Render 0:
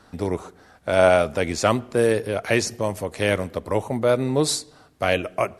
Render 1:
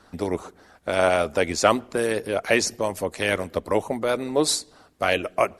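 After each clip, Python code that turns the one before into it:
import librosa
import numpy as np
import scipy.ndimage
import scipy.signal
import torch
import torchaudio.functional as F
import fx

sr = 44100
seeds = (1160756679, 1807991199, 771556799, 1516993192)

y = fx.hpss(x, sr, part='percussive', gain_db=9)
y = fx.peak_eq(y, sr, hz=130.0, db=-9.0, octaves=0.33)
y = y * 10.0 ** (-6.5 / 20.0)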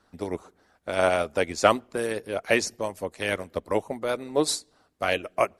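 y = fx.upward_expand(x, sr, threshold_db=-35.0, expansion=1.5)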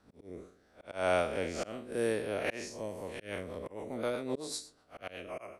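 y = fx.spec_blur(x, sr, span_ms=132.0)
y = fx.auto_swell(y, sr, attack_ms=286.0)
y = fx.rotary_switch(y, sr, hz=0.75, then_hz=8.0, switch_at_s=2.77)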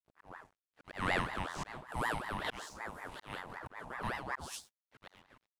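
y = fx.fade_out_tail(x, sr, length_s=1.16)
y = np.sign(y) * np.maximum(np.abs(y) - 10.0 ** (-57.5 / 20.0), 0.0)
y = fx.ring_lfo(y, sr, carrier_hz=920.0, swing_pct=60, hz=5.3)
y = y * 10.0 ** (-1.0 / 20.0)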